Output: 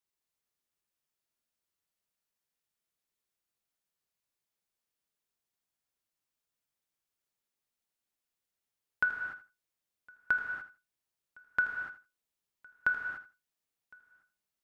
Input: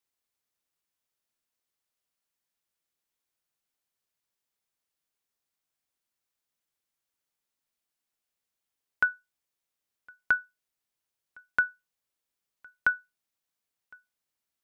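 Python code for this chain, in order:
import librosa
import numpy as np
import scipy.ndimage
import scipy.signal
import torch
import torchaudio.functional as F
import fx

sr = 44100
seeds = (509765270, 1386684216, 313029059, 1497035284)

p1 = fx.low_shelf(x, sr, hz=340.0, db=3.0)
p2 = p1 + fx.echo_feedback(p1, sr, ms=81, feedback_pct=16, wet_db=-14.0, dry=0)
p3 = fx.rev_gated(p2, sr, seeds[0], gate_ms=320, shape='flat', drr_db=2.5)
y = F.gain(torch.from_numpy(p3), -5.0).numpy()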